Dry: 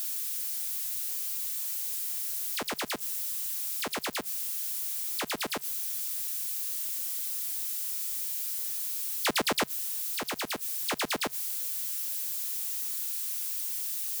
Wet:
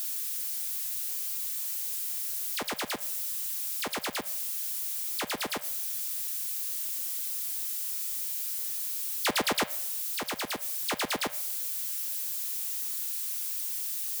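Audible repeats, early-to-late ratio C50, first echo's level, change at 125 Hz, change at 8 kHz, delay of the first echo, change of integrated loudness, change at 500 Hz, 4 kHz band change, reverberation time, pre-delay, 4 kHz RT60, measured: no echo, 16.5 dB, no echo, 0.0 dB, 0.0 dB, no echo, 0.0 dB, 0.0 dB, 0.0 dB, 0.70 s, 3 ms, 0.65 s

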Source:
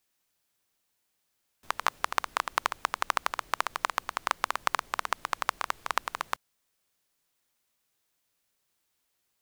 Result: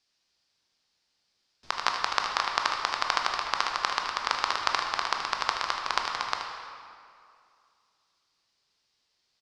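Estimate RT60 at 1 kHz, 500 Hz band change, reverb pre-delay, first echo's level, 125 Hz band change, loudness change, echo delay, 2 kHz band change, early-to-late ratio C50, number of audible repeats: 2.4 s, +1.5 dB, 16 ms, -10.0 dB, no reading, +3.0 dB, 77 ms, +2.5 dB, 2.5 dB, 1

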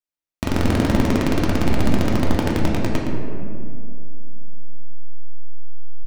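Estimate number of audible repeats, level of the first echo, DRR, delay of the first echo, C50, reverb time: 1, -8.0 dB, -3.5 dB, 115 ms, 0.5 dB, 2.5 s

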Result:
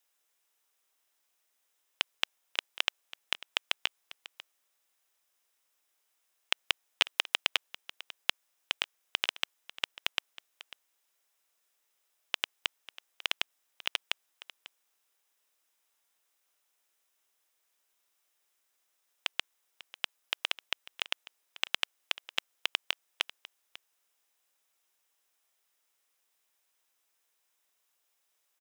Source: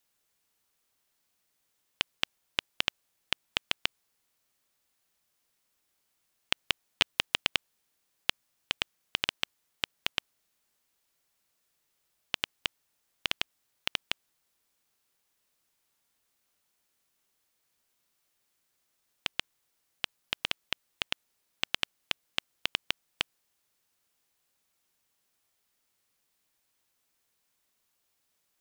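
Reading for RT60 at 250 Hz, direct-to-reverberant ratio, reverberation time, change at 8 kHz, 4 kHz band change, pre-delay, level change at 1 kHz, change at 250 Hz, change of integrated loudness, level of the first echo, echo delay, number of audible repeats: no reverb, no reverb, no reverb, 0.0 dB, 0.0 dB, no reverb, 0.0 dB, -9.0 dB, 0.0 dB, -17.5 dB, 545 ms, 1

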